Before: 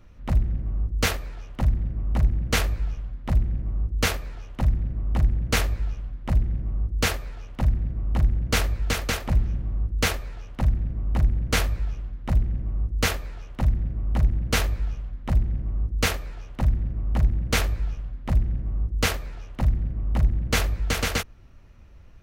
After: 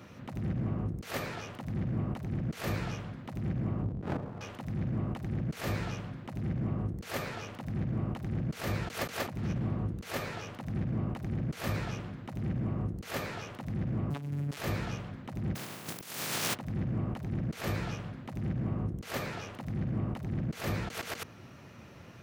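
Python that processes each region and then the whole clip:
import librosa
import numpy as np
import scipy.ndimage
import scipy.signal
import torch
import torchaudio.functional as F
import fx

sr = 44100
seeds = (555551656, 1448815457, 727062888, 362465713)

y = fx.chain(x, sr, fx.cheby2_lowpass(hz=3500.0, order=4, stop_db=60),
    fx.running_max(window=65), at=(3.83, 4.41))
y = fx.chain(y, sr, fx.quant_float(bits=6),
    fx.robotise(hz=143.0),
    fx.doppler_dist(depth_ms=0.98), at=(14.1, 14.57))
y = fx.spec_flatten(y, sr, power=0.24, at=(15.55, 16.53), fade=0.02)
y = fx.peak_eq(y, sr, hz=140.0, db=6.0, octaves=1.3, at=(15.55, 16.53), fade=0.02)
y = scipy.signal.sosfilt(scipy.signal.butter(4, 120.0, 'highpass', fs=sr, output='sos'), y)
y = fx.over_compress(y, sr, threshold_db=-39.0, ratio=-1.0)
y = y * 10.0 ** (3.0 / 20.0)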